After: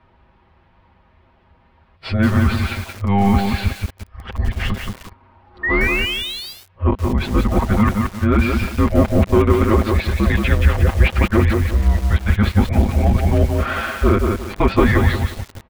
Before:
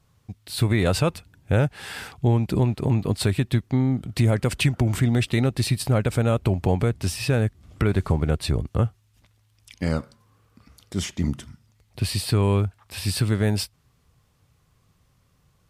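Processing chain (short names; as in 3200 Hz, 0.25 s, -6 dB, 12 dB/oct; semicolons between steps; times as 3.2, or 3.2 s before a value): whole clip reversed; high shelf 6800 Hz -5.5 dB; comb 7 ms, depth 81%; in parallel at -0.5 dB: compressor 5:1, threshold -28 dBFS, peak gain reduction 16 dB; on the sum: painted sound rise, 5.63–6.53, 2000–5100 Hz -24 dBFS; overdrive pedal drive 14 dB, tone 2300 Hz, clips at -3.5 dBFS; frequency shift -200 Hz; air absorption 380 m; lo-fi delay 0.176 s, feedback 35%, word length 6-bit, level -3.5 dB; gain +2.5 dB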